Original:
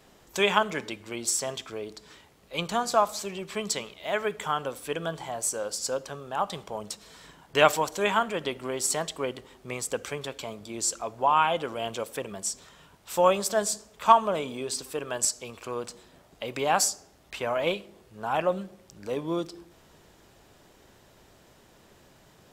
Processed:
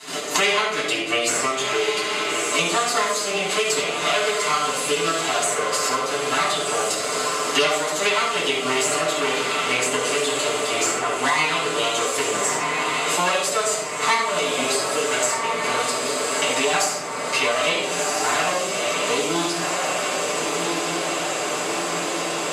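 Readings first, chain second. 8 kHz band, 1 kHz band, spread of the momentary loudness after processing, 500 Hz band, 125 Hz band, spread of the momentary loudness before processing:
+8.5 dB, +5.0 dB, 4 LU, +6.0 dB, +3.0 dB, 15 LU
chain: minimum comb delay 6.7 ms; gate -56 dBFS, range -19 dB; high shelf 6300 Hz +4.5 dB; notch 5700 Hz, Q 5.7; in parallel at +2 dB: compressor, threshold -33 dBFS, peak gain reduction 18.5 dB; on the sum: speaker cabinet 480–10000 Hz, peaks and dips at 900 Hz -10 dB, 1700 Hz -4 dB, 6100 Hz +7 dB; on a send: diffused feedback echo 1.374 s, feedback 55%, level -9 dB; on the sum: shoebox room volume 920 m³, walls furnished, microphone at 9.8 m; three-band squash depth 100%; gain -3.5 dB

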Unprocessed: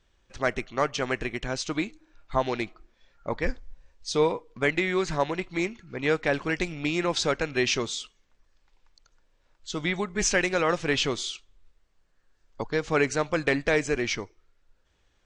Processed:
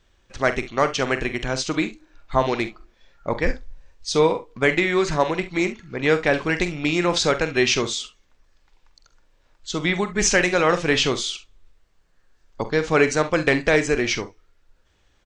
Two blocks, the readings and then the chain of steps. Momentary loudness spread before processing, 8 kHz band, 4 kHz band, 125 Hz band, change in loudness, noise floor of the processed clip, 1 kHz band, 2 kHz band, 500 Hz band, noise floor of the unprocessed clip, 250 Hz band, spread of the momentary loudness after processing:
11 LU, +6.0 dB, +6.0 dB, +6.0 dB, +6.0 dB, -62 dBFS, +6.0 dB, +6.0 dB, +6.0 dB, -68 dBFS, +6.0 dB, 10 LU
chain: early reflections 45 ms -12 dB, 68 ms -16.5 dB; gain +5.5 dB

